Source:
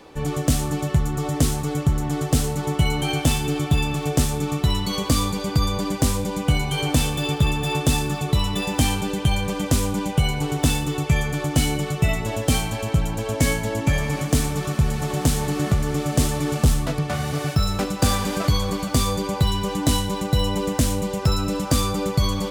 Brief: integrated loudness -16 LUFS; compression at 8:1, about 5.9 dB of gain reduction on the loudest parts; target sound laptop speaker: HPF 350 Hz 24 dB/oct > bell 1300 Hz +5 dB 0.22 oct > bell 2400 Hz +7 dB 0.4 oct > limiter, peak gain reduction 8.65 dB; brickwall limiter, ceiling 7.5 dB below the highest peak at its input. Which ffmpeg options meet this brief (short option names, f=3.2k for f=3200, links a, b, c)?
-af "acompressor=threshold=-20dB:ratio=8,alimiter=limit=-18dB:level=0:latency=1,highpass=f=350:w=0.5412,highpass=f=350:w=1.3066,equalizer=f=1.3k:t=o:w=0.22:g=5,equalizer=f=2.4k:t=o:w=0.4:g=7,volume=16.5dB,alimiter=limit=-7.5dB:level=0:latency=1"